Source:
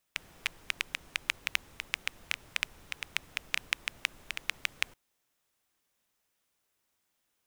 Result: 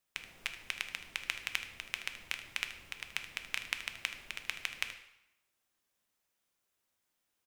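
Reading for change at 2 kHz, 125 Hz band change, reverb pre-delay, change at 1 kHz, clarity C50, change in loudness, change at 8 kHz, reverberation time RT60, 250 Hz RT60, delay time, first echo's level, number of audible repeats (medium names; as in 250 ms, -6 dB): -3.5 dB, -4.0 dB, 3 ms, -3.5 dB, 9.0 dB, -3.5 dB, -3.5 dB, 0.85 s, 0.85 s, 77 ms, -13.5 dB, 1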